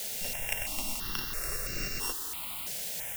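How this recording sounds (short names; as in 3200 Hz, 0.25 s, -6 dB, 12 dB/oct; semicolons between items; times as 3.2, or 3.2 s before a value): a buzz of ramps at a fixed pitch in blocks of 16 samples; tremolo saw up 3.2 Hz, depth 45%; a quantiser's noise floor 6-bit, dither triangular; notches that jump at a steady rate 3 Hz 310–3300 Hz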